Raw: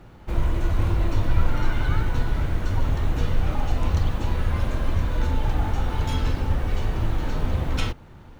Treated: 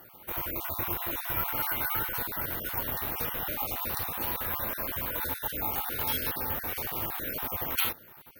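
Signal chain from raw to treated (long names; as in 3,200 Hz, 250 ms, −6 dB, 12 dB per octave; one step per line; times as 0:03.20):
time-frequency cells dropped at random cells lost 31%
high-pass filter 840 Hz 6 dB per octave
bad sample-rate conversion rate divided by 3×, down filtered, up zero stuff
level +1.5 dB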